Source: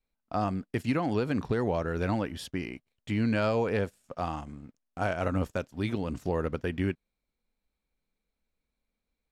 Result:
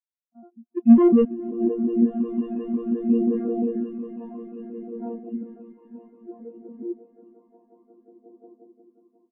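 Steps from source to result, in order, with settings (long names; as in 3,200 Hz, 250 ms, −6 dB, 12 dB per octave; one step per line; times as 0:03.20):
vocoder with an arpeggio as carrier bare fifth, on A#3, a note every 139 ms
0:00.77–0:01.25: leveller curve on the samples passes 5
low-pass filter sweep 3,000 Hz → 970 Hz, 0:02.87–0:04.37
echo that builds up and dies away 179 ms, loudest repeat 8, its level −8 dB
phase shifter 0.59 Hz, delay 1.2 ms, feedback 24%
single-tap delay 413 ms −12 dB
every bin expanded away from the loudest bin 2.5 to 1
level +6 dB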